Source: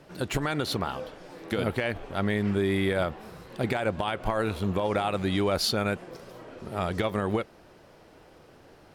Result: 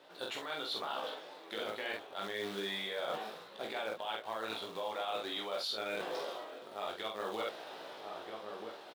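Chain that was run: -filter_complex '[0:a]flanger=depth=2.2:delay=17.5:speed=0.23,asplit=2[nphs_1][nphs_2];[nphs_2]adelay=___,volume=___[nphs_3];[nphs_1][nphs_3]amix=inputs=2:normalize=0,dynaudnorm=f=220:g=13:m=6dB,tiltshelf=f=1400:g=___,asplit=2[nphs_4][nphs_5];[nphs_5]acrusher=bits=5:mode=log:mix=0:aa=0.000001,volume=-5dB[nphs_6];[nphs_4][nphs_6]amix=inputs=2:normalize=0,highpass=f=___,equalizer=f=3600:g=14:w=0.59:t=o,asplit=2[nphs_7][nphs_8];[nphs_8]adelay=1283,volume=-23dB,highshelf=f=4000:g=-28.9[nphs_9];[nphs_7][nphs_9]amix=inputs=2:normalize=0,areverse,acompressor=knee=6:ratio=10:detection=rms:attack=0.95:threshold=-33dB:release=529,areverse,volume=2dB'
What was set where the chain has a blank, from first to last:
46, -3.5dB, 6.5, 680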